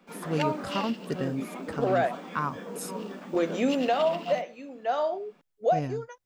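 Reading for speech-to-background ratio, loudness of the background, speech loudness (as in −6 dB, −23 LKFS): 7.0 dB, −36.5 LKFS, −29.5 LKFS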